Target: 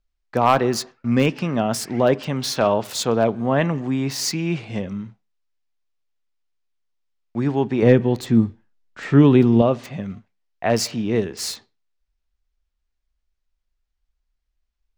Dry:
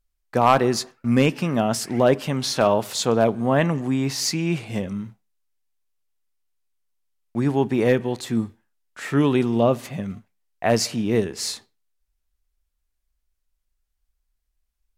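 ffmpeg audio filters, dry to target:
ffmpeg -i in.wav -filter_complex "[0:a]asettb=1/sr,asplit=3[link_01][link_02][link_03];[link_01]atrim=end=7.824[link_04];[link_02]atrim=start=7.82:end=9.62,asetpts=PTS-STARTPTS,afade=type=in:duration=0.004:curve=qsin,afade=type=out:start_time=1.796:duration=0.004:curve=qsin,lowshelf=frequency=410:gain=9.5[link_05];[link_03]atrim=start=9.616[link_06];[link_04][link_05]acrossfade=duration=0.004:curve1=hsin:curve2=qsin[link_07];[link_07][link_06]acrossfade=duration=0.004:curve1=qsin:curve2=hsin,acrossover=split=590|6700[link_08][link_09][link_10];[link_10]acrusher=bits=5:mix=0:aa=0.000001[link_11];[link_08][link_09][link_11]amix=inputs=3:normalize=0" out.wav

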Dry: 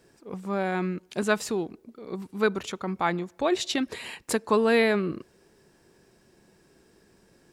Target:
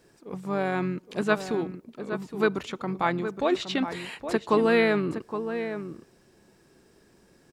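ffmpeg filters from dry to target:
ffmpeg -i in.wav -filter_complex "[0:a]asplit=2[link_01][link_02];[link_02]adelay=816.3,volume=-9dB,highshelf=frequency=4000:gain=-18.4[link_03];[link_01][link_03]amix=inputs=2:normalize=0,acrossover=split=4300[link_04][link_05];[link_05]acompressor=threshold=-48dB:ratio=4:attack=1:release=60[link_06];[link_04][link_06]amix=inputs=2:normalize=0,asplit=2[link_07][link_08];[link_08]asetrate=33038,aresample=44100,atempo=1.33484,volume=-13dB[link_09];[link_07][link_09]amix=inputs=2:normalize=0" out.wav

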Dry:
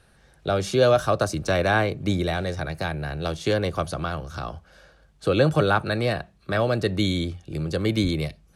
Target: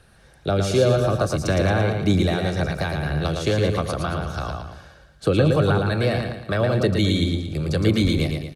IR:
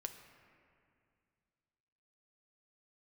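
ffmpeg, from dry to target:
-filter_complex "[0:a]acrossover=split=410[link_01][link_02];[link_02]acompressor=threshold=-27dB:ratio=5[link_03];[link_01][link_03]amix=inputs=2:normalize=0,aecho=1:1:113|226|339|452|565:0.596|0.256|0.11|0.0474|0.0204,aphaser=in_gain=1:out_gain=1:delay=2.2:decay=0.2:speed=1.9:type=triangular,volume=3dB"

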